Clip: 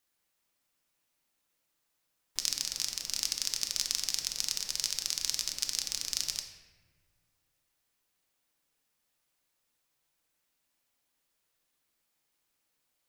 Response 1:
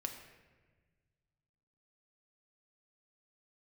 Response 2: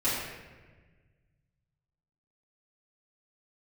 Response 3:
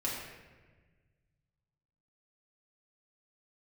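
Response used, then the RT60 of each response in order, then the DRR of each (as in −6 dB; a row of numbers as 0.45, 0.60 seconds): 1; 1.4, 1.4, 1.4 seconds; 3.5, −13.0, −6.0 decibels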